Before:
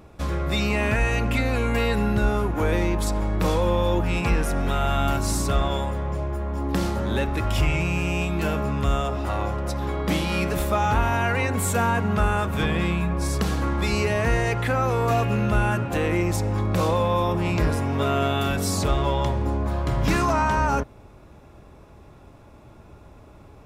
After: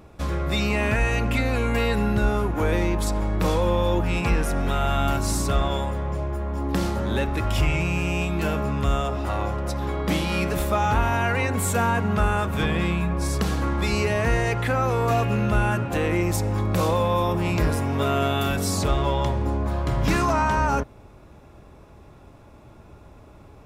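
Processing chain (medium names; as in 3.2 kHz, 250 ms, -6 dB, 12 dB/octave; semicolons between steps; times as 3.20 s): 16.22–18.59 s: treble shelf 11 kHz +8 dB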